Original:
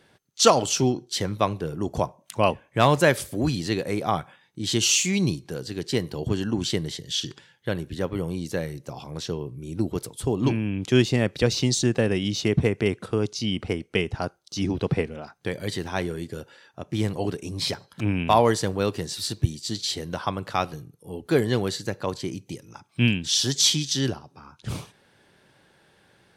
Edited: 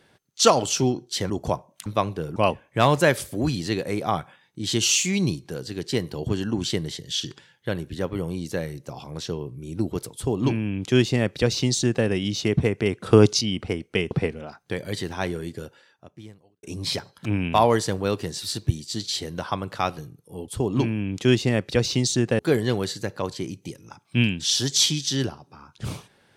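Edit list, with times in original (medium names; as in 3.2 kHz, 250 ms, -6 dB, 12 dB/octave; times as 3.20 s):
1.30–1.80 s: move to 2.36 s
10.15–12.06 s: copy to 21.23 s
13.06–13.41 s: gain +10.5 dB
14.11–14.86 s: delete
16.33–17.38 s: fade out quadratic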